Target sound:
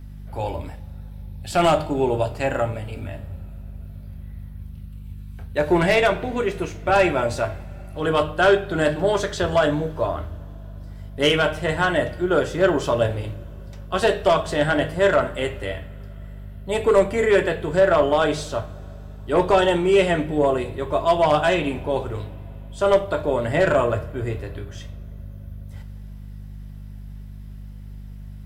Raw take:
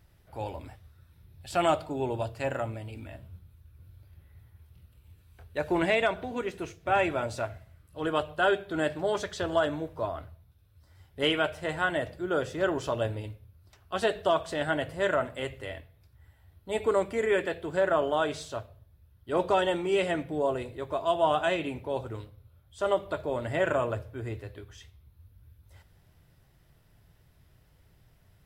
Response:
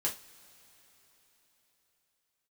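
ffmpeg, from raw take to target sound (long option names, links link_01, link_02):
-filter_complex "[0:a]aeval=exprs='val(0)+0.00398*(sin(2*PI*50*n/s)+sin(2*PI*2*50*n/s)/2+sin(2*PI*3*50*n/s)/3+sin(2*PI*4*50*n/s)/4+sin(2*PI*5*50*n/s)/5)':channel_layout=same,bandreject=frequency=154.7:width_type=h:width=4,bandreject=frequency=309.4:width_type=h:width=4,bandreject=frequency=464.1:width_type=h:width=4,bandreject=frequency=618.8:width_type=h:width=4,bandreject=frequency=773.5:width_type=h:width=4,bandreject=frequency=928.2:width_type=h:width=4,bandreject=frequency=1082.9:width_type=h:width=4,bandreject=frequency=1237.6:width_type=h:width=4,bandreject=frequency=1392.3:width_type=h:width=4,bandreject=frequency=1547:width_type=h:width=4,bandreject=frequency=1701.7:width_type=h:width=4,bandreject=frequency=1856.4:width_type=h:width=4,bandreject=frequency=2011.1:width_type=h:width=4,bandreject=frequency=2165.8:width_type=h:width=4,bandreject=frequency=2320.5:width_type=h:width=4,bandreject=frequency=2475.2:width_type=h:width=4,bandreject=frequency=2629.9:width_type=h:width=4,bandreject=frequency=2784.6:width_type=h:width=4,bandreject=frequency=2939.3:width_type=h:width=4,bandreject=frequency=3094:width_type=h:width=4,bandreject=frequency=3248.7:width_type=h:width=4,bandreject=frequency=3403.4:width_type=h:width=4,bandreject=frequency=3558.1:width_type=h:width=4,bandreject=frequency=3712.8:width_type=h:width=4,bandreject=frequency=3867.5:width_type=h:width=4,bandreject=frequency=4022.2:width_type=h:width=4,bandreject=frequency=4176.9:width_type=h:width=4,bandreject=frequency=4331.6:width_type=h:width=4,bandreject=frequency=4486.3:width_type=h:width=4,bandreject=frequency=4641:width_type=h:width=4,bandreject=frequency=4795.7:width_type=h:width=4,bandreject=frequency=4950.4:width_type=h:width=4,bandreject=frequency=5105.1:width_type=h:width=4,bandreject=frequency=5259.8:width_type=h:width=4,bandreject=frequency=5414.5:width_type=h:width=4,bandreject=frequency=5569.2:width_type=h:width=4,bandreject=frequency=5723.9:width_type=h:width=4,aeval=exprs='0.237*(cos(1*acos(clip(val(0)/0.237,-1,1)))-cos(1*PI/2))+0.0422*(cos(5*acos(clip(val(0)/0.237,-1,1)))-cos(5*PI/2))+0.0188*(cos(7*acos(clip(val(0)/0.237,-1,1)))-cos(7*PI/2))':channel_layout=same,asplit=2[link_01][link_02];[1:a]atrim=start_sample=2205,lowshelf=frequency=190:gain=10[link_03];[link_02][link_03]afir=irnorm=-1:irlink=0,volume=-8.5dB[link_04];[link_01][link_04]amix=inputs=2:normalize=0,volume=3dB"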